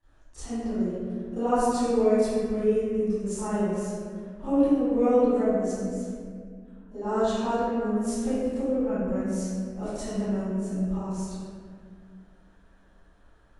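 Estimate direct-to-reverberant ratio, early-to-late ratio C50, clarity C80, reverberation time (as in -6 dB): -18.5 dB, -7.5 dB, -4.0 dB, 2.0 s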